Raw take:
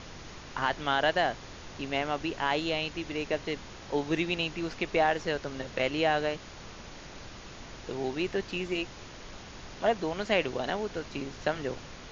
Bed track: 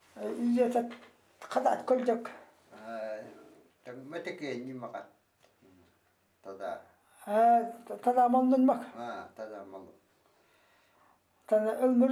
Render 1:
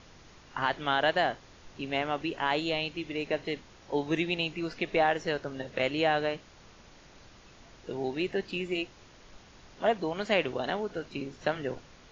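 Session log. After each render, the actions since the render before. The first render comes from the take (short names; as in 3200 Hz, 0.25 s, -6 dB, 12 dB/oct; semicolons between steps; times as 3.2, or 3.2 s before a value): noise print and reduce 9 dB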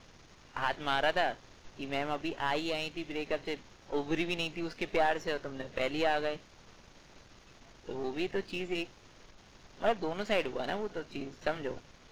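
half-wave gain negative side -7 dB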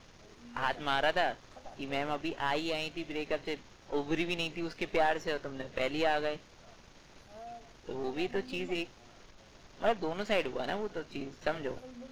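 add bed track -23.5 dB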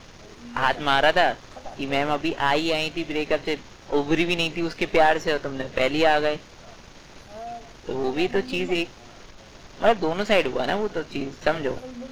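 gain +10.5 dB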